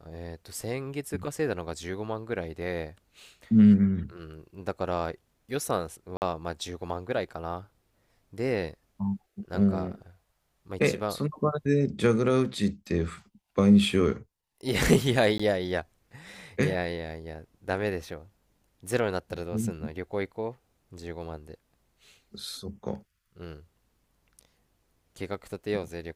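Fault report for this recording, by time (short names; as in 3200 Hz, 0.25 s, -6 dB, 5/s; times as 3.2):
6.17–6.22 gap 49 ms
15.38–15.39 gap 15 ms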